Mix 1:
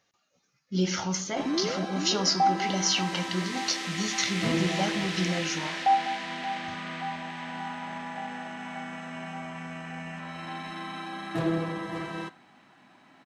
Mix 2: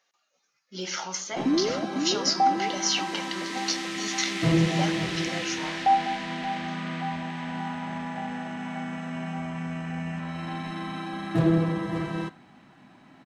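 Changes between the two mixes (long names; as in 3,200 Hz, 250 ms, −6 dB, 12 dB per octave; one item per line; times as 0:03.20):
speech: add high-pass filter 690 Hz 12 dB per octave
master: add low-shelf EQ 300 Hz +11.5 dB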